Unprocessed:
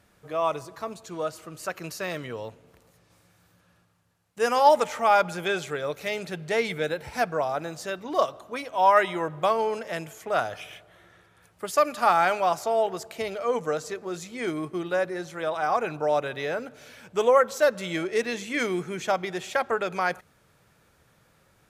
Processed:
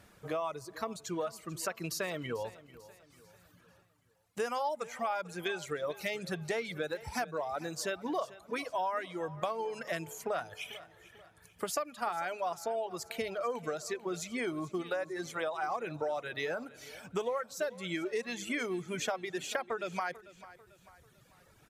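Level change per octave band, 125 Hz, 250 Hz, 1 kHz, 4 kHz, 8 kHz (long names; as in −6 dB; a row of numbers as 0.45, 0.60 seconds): −6.0, −6.0, −12.5, −6.5, −3.0 decibels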